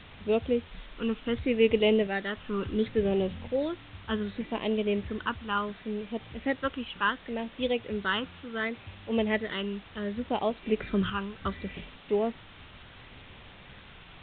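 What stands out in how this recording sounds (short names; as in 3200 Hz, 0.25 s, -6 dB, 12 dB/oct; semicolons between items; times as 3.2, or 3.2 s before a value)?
phasing stages 12, 0.69 Hz, lowest notch 640–1500 Hz; a quantiser's noise floor 8-bit, dither triangular; A-law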